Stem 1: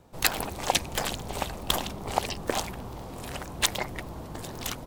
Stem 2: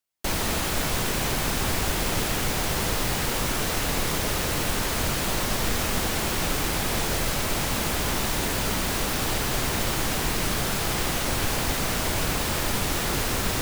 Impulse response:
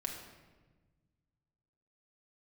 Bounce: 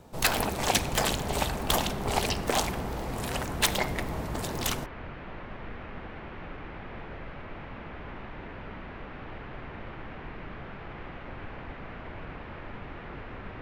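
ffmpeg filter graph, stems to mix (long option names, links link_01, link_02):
-filter_complex "[0:a]asoftclip=type=tanh:threshold=-20.5dB,volume=2dB,asplit=2[link_01][link_02];[link_02]volume=-7dB[link_03];[1:a]lowpass=frequency=2400:width=0.5412,lowpass=frequency=2400:width=1.3066,volume=-13.5dB[link_04];[2:a]atrim=start_sample=2205[link_05];[link_03][link_05]afir=irnorm=-1:irlink=0[link_06];[link_01][link_04][link_06]amix=inputs=3:normalize=0"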